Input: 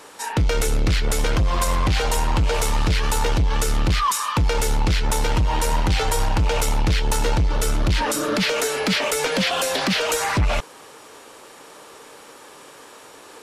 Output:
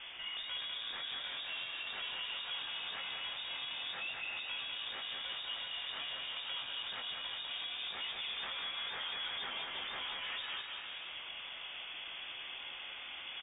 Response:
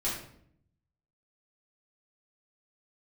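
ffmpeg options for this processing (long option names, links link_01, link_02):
-af "highpass=220,acompressor=threshold=-36dB:ratio=6,flanger=delay=17.5:depth=4.9:speed=0.4,aresample=11025,asoftclip=type=tanh:threshold=-38.5dB,aresample=44100,aecho=1:1:200|360|488|590.4|672.3:0.631|0.398|0.251|0.158|0.1,lowpass=frequency=3200:width_type=q:width=0.5098,lowpass=frequency=3200:width_type=q:width=0.6013,lowpass=frequency=3200:width_type=q:width=0.9,lowpass=frequency=3200:width_type=q:width=2.563,afreqshift=-3800,volume=1dB"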